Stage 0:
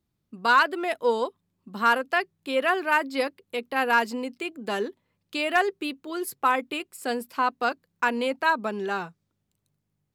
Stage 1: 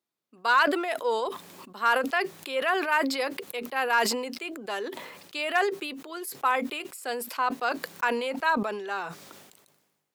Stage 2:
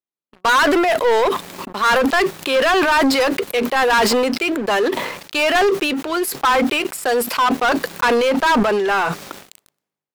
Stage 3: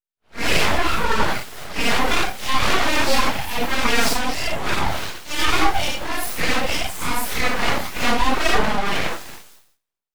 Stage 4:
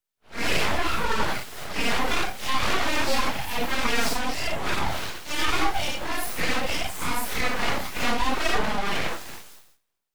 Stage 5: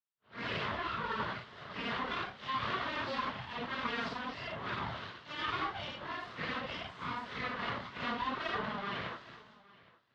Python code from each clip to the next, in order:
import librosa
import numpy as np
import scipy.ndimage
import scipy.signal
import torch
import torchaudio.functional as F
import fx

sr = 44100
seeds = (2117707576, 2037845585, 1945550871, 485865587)

y1 = scipy.signal.sosfilt(scipy.signal.butter(2, 460.0, 'highpass', fs=sr, output='sos'), x)
y1 = fx.sustainer(y1, sr, db_per_s=46.0)
y1 = y1 * 10.0 ** (-2.5 / 20.0)
y2 = fx.leveller(y1, sr, passes=5)
y2 = fx.high_shelf(y2, sr, hz=4500.0, db=-5.5)
y3 = fx.phase_scramble(y2, sr, seeds[0], window_ms=200)
y3 = np.abs(y3)
y4 = fx.band_squash(y3, sr, depth_pct=40)
y4 = y4 * 10.0 ** (-5.5 / 20.0)
y5 = fx.cabinet(y4, sr, low_hz=100.0, low_slope=12, high_hz=3700.0, hz=(120.0, 310.0, 510.0, 790.0, 1100.0, 2400.0), db=(5, -6, -3, -7, 4, -7))
y5 = y5 + 10.0 ** (-22.0 / 20.0) * np.pad(y5, (int(818 * sr / 1000.0), 0))[:len(y5)]
y5 = y5 * 10.0 ** (-9.0 / 20.0)